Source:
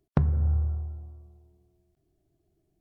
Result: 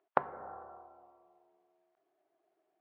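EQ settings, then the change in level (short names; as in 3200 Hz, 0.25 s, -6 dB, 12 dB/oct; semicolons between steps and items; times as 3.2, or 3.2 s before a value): HPF 670 Hz 12 dB/oct; band-pass 900 Hz, Q 0.81; air absorption 220 m; +11.0 dB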